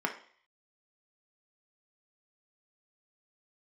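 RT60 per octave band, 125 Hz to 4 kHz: 0.40, 0.45, 0.50, 0.55, 0.60, 0.55 s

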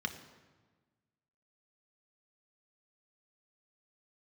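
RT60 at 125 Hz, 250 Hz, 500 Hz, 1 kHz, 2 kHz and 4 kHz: 1.7, 1.6, 1.4, 1.3, 1.2, 1.0 s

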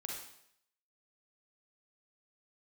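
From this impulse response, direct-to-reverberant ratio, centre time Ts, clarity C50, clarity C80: -1.5 dB, 51 ms, 1.0 dB, 5.5 dB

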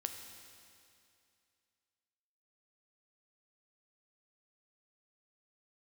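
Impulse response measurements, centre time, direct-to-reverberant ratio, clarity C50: 45 ms, 5.0 dB, 6.5 dB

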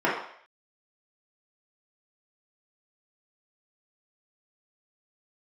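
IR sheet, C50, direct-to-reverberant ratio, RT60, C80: 3.5 dB, -8.0 dB, 0.60 s, 7.0 dB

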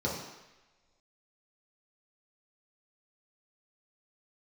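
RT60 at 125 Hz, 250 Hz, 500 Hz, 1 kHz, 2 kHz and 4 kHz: 0.90, 0.95, 1.0, 1.1, 1.3, 1.2 s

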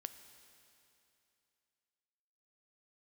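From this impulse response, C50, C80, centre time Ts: 10.5 dB, 11.0 dB, 22 ms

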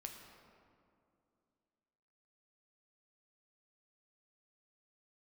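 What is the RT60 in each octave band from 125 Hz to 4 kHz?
2.8, 3.0, 2.7, 2.4, 1.7, 1.2 s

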